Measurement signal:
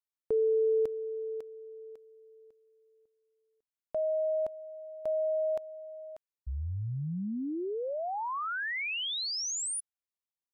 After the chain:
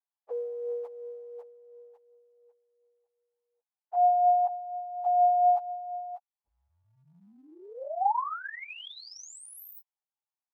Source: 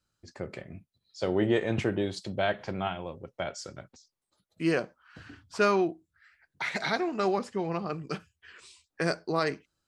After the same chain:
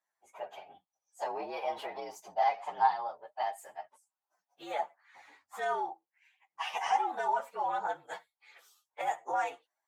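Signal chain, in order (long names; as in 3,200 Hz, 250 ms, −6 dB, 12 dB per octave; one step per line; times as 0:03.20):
partials spread apart or drawn together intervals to 114%
brickwall limiter −25 dBFS
high-shelf EQ 2,200 Hz −7.5 dB
phase shifter 1.4 Hz, delay 2.1 ms, feedback 29%
high-pass with resonance 820 Hz, resonance Q 4.9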